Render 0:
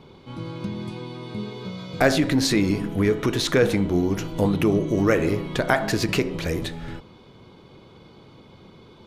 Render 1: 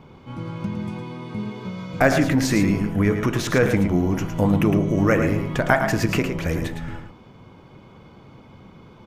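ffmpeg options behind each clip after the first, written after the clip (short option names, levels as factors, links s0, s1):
-filter_complex "[0:a]equalizer=f=400:t=o:w=0.67:g=-6,equalizer=f=4000:t=o:w=0.67:g=-12,equalizer=f=10000:t=o:w=0.67:g=-6,asplit=2[s0][s1];[s1]aecho=0:1:110:0.422[s2];[s0][s2]amix=inputs=2:normalize=0,volume=1.41"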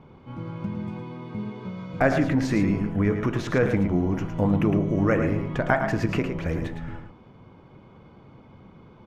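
-af "aemphasis=mode=reproduction:type=75kf,volume=0.708"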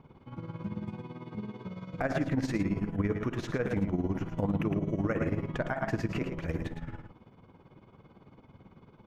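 -af "tremolo=f=18:d=0.71,alimiter=limit=0.15:level=0:latency=1:release=111,volume=0.708"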